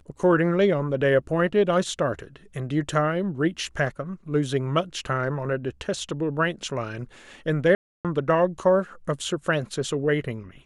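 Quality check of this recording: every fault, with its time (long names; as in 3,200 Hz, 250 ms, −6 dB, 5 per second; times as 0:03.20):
0:07.75–0:08.05: drop-out 297 ms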